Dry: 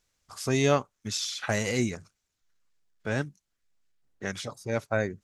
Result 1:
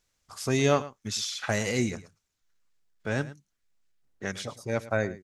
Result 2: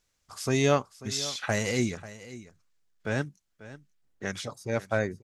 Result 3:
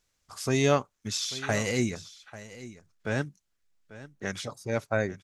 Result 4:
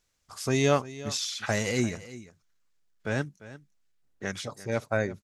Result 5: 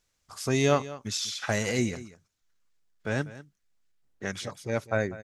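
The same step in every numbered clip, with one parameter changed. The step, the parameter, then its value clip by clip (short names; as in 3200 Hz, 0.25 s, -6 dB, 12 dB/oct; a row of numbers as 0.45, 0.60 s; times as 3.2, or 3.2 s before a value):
echo, time: 0.11, 0.541, 0.842, 0.347, 0.196 s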